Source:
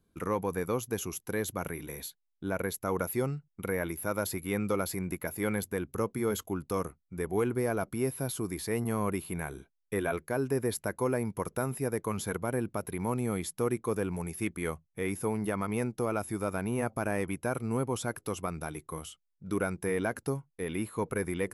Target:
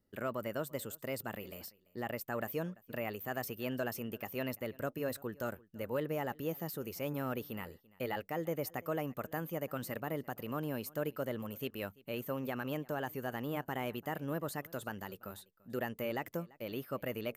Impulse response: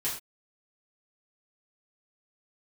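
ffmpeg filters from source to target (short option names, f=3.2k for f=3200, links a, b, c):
-af "asetrate=54684,aresample=44100,aecho=1:1:340:0.0668,volume=-6.5dB"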